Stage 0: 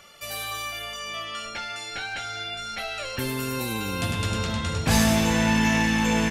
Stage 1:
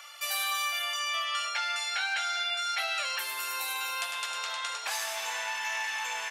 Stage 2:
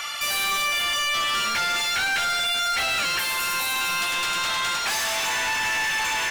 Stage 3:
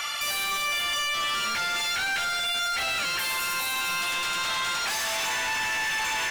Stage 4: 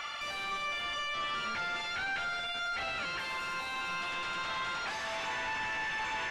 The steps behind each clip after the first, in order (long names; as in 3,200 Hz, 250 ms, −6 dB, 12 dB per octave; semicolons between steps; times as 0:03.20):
downward compressor 6 to 1, threshold −29 dBFS, peak gain reduction 12.5 dB; high-pass filter 790 Hz 24 dB per octave; level +3.5 dB
mid-hump overdrive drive 25 dB, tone 7,700 Hz, clips at −18 dBFS
brickwall limiter −24 dBFS, peak gain reduction 5 dB
head-to-tape spacing loss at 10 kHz 23 dB; level −3 dB